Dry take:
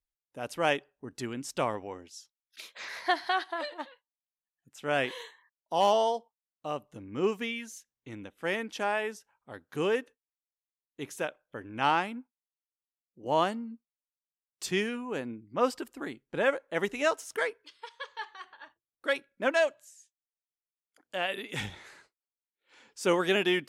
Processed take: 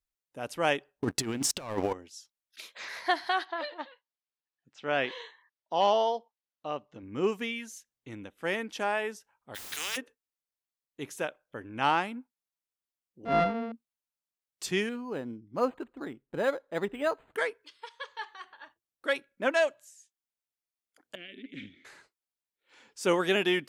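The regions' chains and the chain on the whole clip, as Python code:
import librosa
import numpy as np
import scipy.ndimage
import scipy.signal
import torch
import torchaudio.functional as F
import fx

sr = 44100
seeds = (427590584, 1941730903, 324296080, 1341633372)

y = fx.chain(x, sr, fx.leveller(passes=3),
    fx.over_compress(threshold_db=-30.0, ratio=-0.5), at=(0.91, 1.93))
y = fx.chain(y, sr, fx.lowpass(hz=5300.0, slope=24),
    fx.low_shelf(hz=110.0, db=-10.5), at=(3.45, 7.03))
y = fx.highpass_res(y, sr, hz=2700.0, q=2.8, at=(9.54, 9.96), fade=0.02)
y = fx.dmg_noise_colour(y, sr, seeds[0], colour='white', level_db=-60.0, at=(9.54, 9.96), fade=0.02)
y = fx.spectral_comp(y, sr, ratio=4.0, at=(9.54, 9.96), fade=0.02)
y = fx.chain(y, sr, fx.sample_sort(block=64),
    fx.spacing_loss(db_at_10k=34),
    fx.comb(ms=4.3, depth=0.82), at=(13.25, 13.72))
y = fx.chain(y, sr, fx.air_absorb(metres=300.0),
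    fx.resample_linear(factor=8), at=(14.89, 17.36))
y = fx.chain(y, sr, fx.vowel_filter(vowel='i'),
    fx.low_shelf(hz=460.0, db=9.0),
    fx.doppler_dist(depth_ms=0.11), at=(21.15, 21.85))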